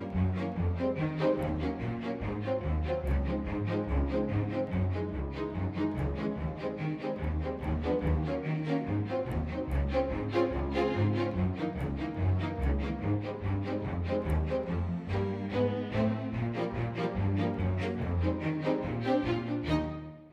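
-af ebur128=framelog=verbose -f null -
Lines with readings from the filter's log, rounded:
Integrated loudness:
  I:         -32.2 LUFS
  Threshold: -42.2 LUFS
Loudness range:
  LRA:         1.8 LU
  Threshold: -52.3 LUFS
  LRA low:   -33.2 LUFS
  LRA high:  -31.4 LUFS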